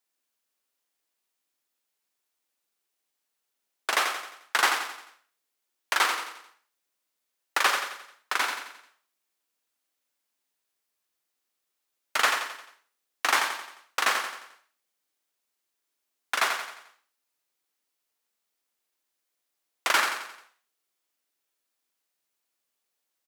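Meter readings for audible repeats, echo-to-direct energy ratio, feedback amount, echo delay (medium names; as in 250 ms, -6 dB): 5, -5.5 dB, 46%, 88 ms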